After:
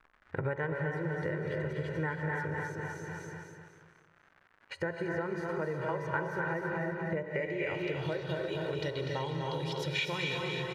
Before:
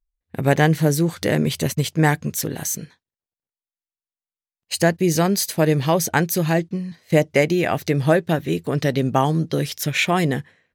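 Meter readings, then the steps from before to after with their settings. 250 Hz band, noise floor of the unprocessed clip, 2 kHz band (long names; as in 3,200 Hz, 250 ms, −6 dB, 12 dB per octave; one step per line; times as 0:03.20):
−17.0 dB, below −85 dBFS, −10.0 dB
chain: comb filter 2.1 ms, depth 87%
repeating echo 246 ms, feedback 40%, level −6 dB
reverb whose tail is shaped and stops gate 360 ms rising, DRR 3 dB
surface crackle 260 per second −41 dBFS
downward compressor 16 to 1, threshold −28 dBFS, peak gain reduction 21 dB
high-shelf EQ 8,600 Hz +11 dB
hum removal 60.94 Hz, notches 21
low-pass filter sweep 1,600 Hz → 3,700 Hz, 0:07.23–0:08.16
dynamic equaliser 4,000 Hz, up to −4 dB, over −45 dBFS, Q 0.72
level −3 dB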